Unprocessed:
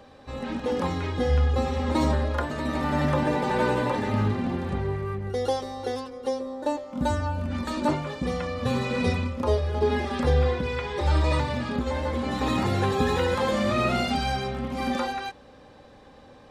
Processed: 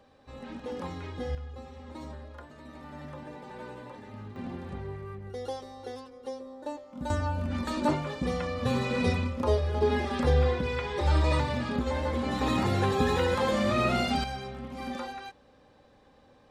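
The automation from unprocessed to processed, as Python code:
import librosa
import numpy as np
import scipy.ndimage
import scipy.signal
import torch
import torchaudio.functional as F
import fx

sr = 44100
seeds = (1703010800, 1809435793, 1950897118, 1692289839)

y = fx.gain(x, sr, db=fx.steps((0.0, -10.0), (1.35, -19.0), (4.36, -10.0), (7.1, -2.0), (14.24, -9.0)))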